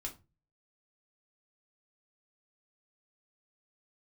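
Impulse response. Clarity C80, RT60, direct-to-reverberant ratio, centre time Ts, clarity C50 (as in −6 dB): 21.0 dB, 0.30 s, 0.0 dB, 12 ms, 14.0 dB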